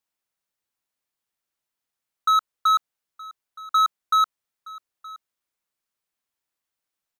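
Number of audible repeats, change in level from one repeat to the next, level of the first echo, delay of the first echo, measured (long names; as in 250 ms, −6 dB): 1, repeats not evenly spaced, −20.5 dB, 920 ms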